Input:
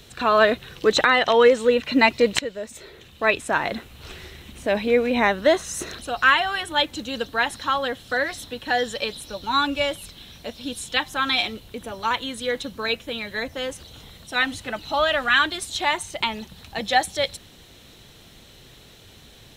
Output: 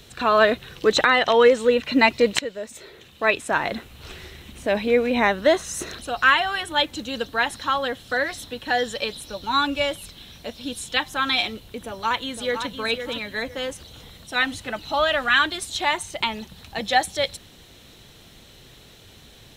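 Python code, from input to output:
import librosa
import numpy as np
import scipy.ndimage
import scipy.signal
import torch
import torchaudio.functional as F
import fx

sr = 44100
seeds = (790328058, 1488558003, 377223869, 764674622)

y = fx.low_shelf(x, sr, hz=83.0, db=-9.5, at=(2.31, 3.51))
y = fx.echo_throw(y, sr, start_s=11.78, length_s=0.91, ms=510, feedback_pct=25, wet_db=-8.0)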